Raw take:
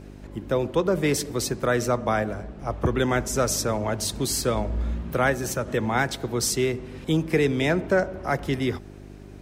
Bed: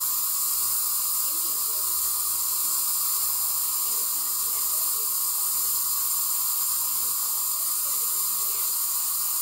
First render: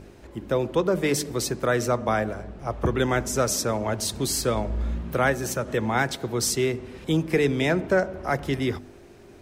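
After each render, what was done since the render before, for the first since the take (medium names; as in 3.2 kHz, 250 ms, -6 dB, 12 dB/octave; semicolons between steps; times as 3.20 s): de-hum 50 Hz, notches 6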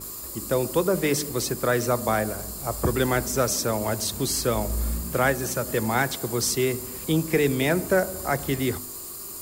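add bed -11.5 dB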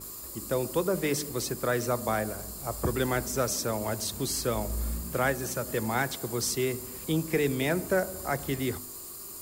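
trim -5 dB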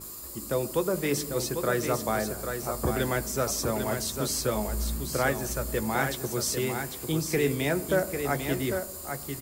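doubling 14 ms -11 dB; delay 798 ms -6.5 dB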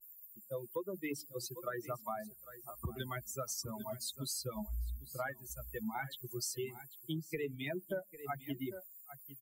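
expander on every frequency bin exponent 3; compression 6:1, threshold -36 dBFS, peak gain reduction 12 dB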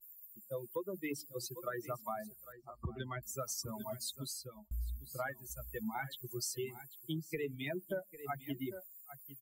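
2.52–3.23 s: distance through air 190 m; 4.11–4.71 s: fade out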